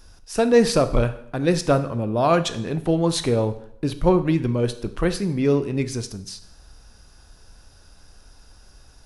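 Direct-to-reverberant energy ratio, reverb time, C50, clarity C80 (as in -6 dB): 10.0 dB, 0.70 s, 13.5 dB, 17.0 dB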